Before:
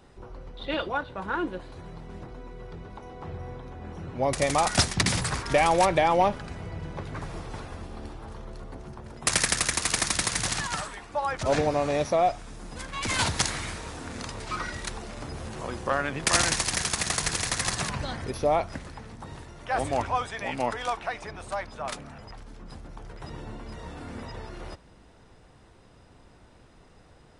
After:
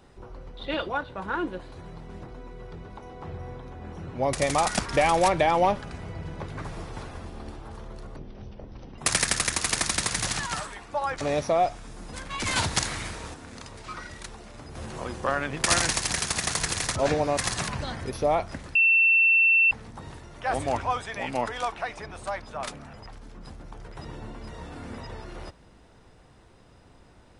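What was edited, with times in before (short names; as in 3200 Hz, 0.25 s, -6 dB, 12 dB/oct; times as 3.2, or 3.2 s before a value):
4.79–5.36 cut
8.73–9.19 speed 56%
11.42–11.84 move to 17.58
13.97–15.38 gain -6 dB
18.96 add tone 2690 Hz -16 dBFS 0.96 s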